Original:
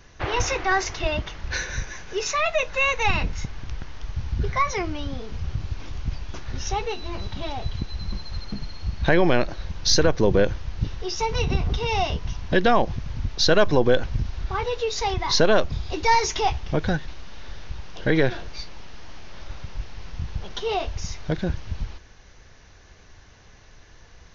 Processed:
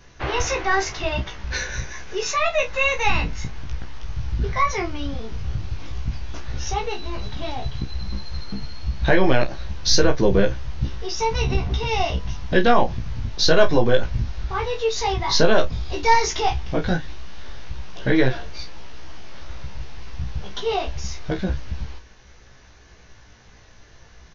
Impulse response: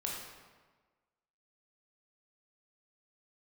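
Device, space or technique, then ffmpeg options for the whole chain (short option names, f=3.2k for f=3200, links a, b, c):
double-tracked vocal: -filter_complex "[0:a]asplit=2[a][b];[b]adelay=31,volume=-11dB[c];[a][c]amix=inputs=2:normalize=0,flanger=delay=15:depth=2.8:speed=0.1,volume=4dB"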